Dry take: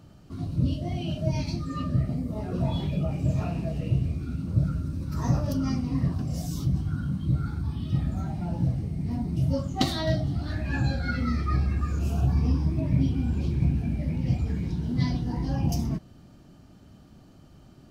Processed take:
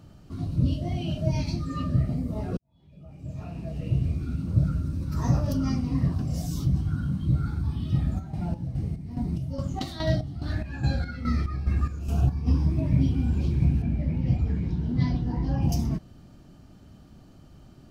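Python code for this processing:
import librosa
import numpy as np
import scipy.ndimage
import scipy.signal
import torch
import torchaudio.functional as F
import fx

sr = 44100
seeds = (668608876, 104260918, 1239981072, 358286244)

y = fx.chopper(x, sr, hz=2.4, depth_pct=65, duty_pct=50, at=(8.18, 12.46), fade=0.02)
y = fx.lowpass(y, sr, hz=2700.0, slope=6, at=(13.82, 15.62))
y = fx.edit(y, sr, fx.fade_in_span(start_s=2.57, length_s=1.52, curve='qua'), tone=tone)
y = fx.low_shelf(y, sr, hz=68.0, db=5.5)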